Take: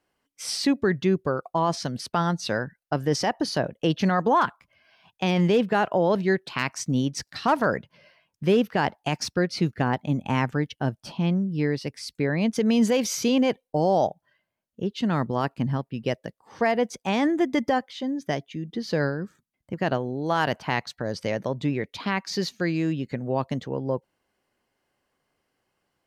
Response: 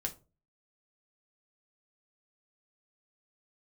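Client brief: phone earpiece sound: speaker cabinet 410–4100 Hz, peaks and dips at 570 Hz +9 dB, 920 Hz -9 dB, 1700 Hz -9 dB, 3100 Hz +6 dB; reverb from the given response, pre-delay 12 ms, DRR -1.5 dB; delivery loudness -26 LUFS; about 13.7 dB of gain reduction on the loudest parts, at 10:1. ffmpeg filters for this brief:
-filter_complex "[0:a]acompressor=threshold=-31dB:ratio=10,asplit=2[a][b];[1:a]atrim=start_sample=2205,adelay=12[c];[b][c]afir=irnorm=-1:irlink=0,volume=1dB[d];[a][d]amix=inputs=2:normalize=0,highpass=410,equalizer=f=570:t=q:w=4:g=9,equalizer=f=920:t=q:w=4:g=-9,equalizer=f=1.7k:t=q:w=4:g=-9,equalizer=f=3.1k:t=q:w=4:g=6,lowpass=f=4.1k:w=0.5412,lowpass=f=4.1k:w=1.3066,volume=8.5dB"

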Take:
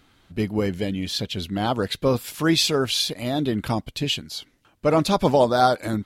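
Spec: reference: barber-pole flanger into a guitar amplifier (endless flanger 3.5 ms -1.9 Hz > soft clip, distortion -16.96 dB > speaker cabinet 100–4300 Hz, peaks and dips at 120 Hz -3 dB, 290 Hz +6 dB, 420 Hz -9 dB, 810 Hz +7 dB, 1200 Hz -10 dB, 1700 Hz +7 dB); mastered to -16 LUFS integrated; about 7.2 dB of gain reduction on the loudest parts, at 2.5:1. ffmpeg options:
-filter_complex "[0:a]acompressor=threshold=-24dB:ratio=2.5,asplit=2[a][b];[b]adelay=3.5,afreqshift=-1.9[c];[a][c]amix=inputs=2:normalize=1,asoftclip=threshold=-21.5dB,highpass=100,equalizer=f=120:t=q:w=4:g=-3,equalizer=f=290:t=q:w=4:g=6,equalizer=f=420:t=q:w=4:g=-9,equalizer=f=810:t=q:w=4:g=7,equalizer=f=1.2k:t=q:w=4:g=-10,equalizer=f=1.7k:t=q:w=4:g=7,lowpass=f=4.3k:w=0.5412,lowpass=f=4.3k:w=1.3066,volume=15.5dB"

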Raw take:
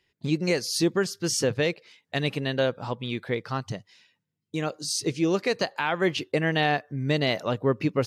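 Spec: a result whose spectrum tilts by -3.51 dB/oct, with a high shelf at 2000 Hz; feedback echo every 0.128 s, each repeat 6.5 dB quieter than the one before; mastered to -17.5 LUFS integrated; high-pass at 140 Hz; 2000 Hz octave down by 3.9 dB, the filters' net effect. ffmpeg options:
-af "highpass=140,highshelf=f=2k:g=6.5,equalizer=f=2k:t=o:g=-9,aecho=1:1:128|256|384|512|640|768:0.473|0.222|0.105|0.0491|0.0231|0.0109,volume=7.5dB"

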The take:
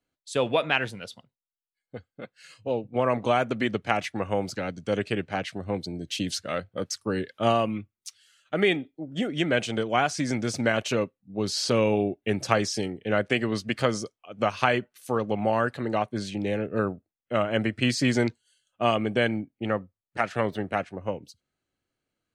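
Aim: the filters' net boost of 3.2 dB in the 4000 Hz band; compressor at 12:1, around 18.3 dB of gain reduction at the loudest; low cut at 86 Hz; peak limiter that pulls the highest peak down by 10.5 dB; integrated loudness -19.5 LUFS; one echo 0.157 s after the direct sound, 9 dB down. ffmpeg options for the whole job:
-af "highpass=86,equalizer=f=4k:t=o:g=4.5,acompressor=threshold=-36dB:ratio=12,alimiter=level_in=6dB:limit=-24dB:level=0:latency=1,volume=-6dB,aecho=1:1:157:0.355,volume=23dB"

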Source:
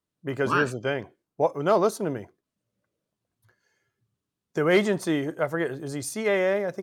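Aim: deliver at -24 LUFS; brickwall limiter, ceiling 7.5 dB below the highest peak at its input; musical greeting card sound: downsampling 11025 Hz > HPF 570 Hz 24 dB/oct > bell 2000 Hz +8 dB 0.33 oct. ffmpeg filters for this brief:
-af "alimiter=limit=-17dB:level=0:latency=1,aresample=11025,aresample=44100,highpass=f=570:w=0.5412,highpass=f=570:w=1.3066,equalizer=f=2k:t=o:w=0.33:g=8,volume=7dB"

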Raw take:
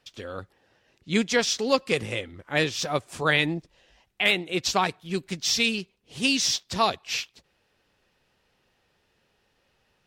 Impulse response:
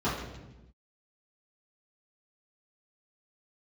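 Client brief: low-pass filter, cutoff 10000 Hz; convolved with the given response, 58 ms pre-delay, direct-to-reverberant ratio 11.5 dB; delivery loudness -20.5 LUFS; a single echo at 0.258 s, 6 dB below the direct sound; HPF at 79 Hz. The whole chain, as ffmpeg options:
-filter_complex "[0:a]highpass=79,lowpass=10k,aecho=1:1:258:0.501,asplit=2[a][b];[1:a]atrim=start_sample=2205,adelay=58[c];[b][c]afir=irnorm=-1:irlink=0,volume=-23dB[d];[a][d]amix=inputs=2:normalize=0,volume=3.5dB"

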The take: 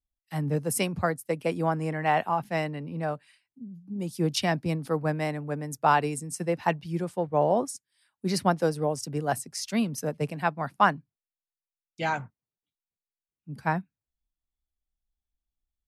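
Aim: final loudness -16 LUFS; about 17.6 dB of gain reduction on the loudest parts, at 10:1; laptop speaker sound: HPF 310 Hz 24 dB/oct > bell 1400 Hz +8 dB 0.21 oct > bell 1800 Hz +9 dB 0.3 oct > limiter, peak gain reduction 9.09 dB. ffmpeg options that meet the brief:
-af "acompressor=threshold=-34dB:ratio=10,highpass=f=310:w=0.5412,highpass=f=310:w=1.3066,equalizer=f=1.4k:t=o:w=0.21:g=8,equalizer=f=1.8k:t=o:w=0.3:g=9,volume=25.5dB,alimiter=limit=-2.5dB:level=0:latency=1"

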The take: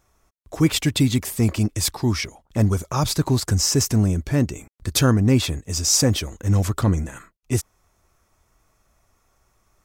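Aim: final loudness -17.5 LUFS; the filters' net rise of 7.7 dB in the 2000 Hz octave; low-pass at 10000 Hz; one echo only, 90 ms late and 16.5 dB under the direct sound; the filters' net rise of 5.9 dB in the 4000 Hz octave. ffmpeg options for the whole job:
-af "lowpass=10k,equalizer=f=2k:t=o:g=8,equalizer=f=4k:t=o:g=6,aecho=1:1:90:0.15,volume=1.5dB"

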